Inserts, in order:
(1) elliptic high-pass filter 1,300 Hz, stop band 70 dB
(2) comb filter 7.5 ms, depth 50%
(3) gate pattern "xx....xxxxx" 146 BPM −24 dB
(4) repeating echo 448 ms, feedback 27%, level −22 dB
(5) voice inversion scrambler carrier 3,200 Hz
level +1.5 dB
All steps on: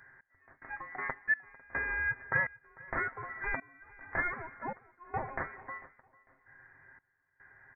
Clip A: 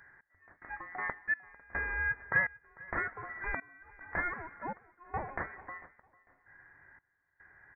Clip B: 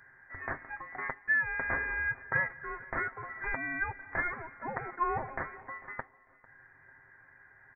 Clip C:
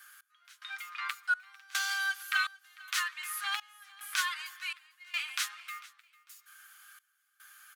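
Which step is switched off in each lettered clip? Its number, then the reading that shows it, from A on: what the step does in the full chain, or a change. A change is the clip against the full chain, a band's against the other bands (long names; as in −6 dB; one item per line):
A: 2, change in momentary loudness spread +3 LU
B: 3, change in crest factor −2.5 dB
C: 5, change in momentary loudness spread +6 LU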